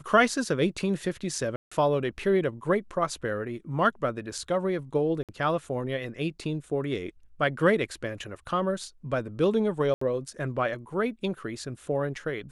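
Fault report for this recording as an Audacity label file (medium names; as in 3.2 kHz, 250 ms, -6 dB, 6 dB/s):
1.560000	1.720000	dropout 155 ms
5.230000	5.290000	dropout 57 ms
9.940000	10.010000	dropout 74 ms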